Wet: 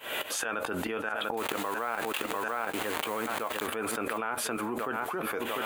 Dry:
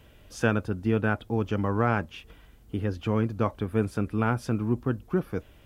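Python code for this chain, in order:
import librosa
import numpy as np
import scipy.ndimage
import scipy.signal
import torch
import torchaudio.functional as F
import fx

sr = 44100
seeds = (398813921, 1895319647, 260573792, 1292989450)

y = fx.delta_hold(x, sr, step_db=-36.0, at=(1.37, 3.67))
y = scipy.signal.sosfilt(scipy.signal.butter(2, 690.0, 'highpass', fs=sr, output='sos'), y)
y = fx.peak_eq(y, sr, hz=5400.0, db=-12.5, octaves=0.47)
y = fx.rider(y, sr, range_db=4, speed_s=2.0)
y = fx.tremolo_shape(y, sr, shape='saw_up', hz=4.6, depth_pct=95)
y = fx.doubler(y, sr, ms=13.0, db=-12)
y = fx.echo_feedback(y, sr, ms=696, feedback_pct=45, wet_db=-17.5)
y = fx.env_flatten(y, sr, amount_pct=100)
y = F.gain(torch.from_numpy(y), -5.0).numpy()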